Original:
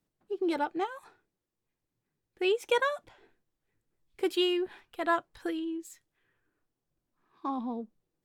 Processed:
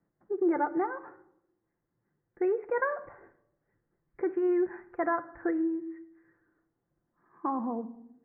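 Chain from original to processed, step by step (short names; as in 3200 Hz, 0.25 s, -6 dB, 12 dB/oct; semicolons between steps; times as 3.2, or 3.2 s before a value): HPF 62 Hz 6 dB/oct; in parallel at -1 dB: compressor, threshold -38 dBFS, peak gain reduction 15 dB; on the sum: limiter -20.5 dBFS, peak gain reduction 6.5 dB; steep low-pass 2000 Hz 72 dB/oct; shoebox room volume 2300 m³, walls furnished, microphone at 0.82 m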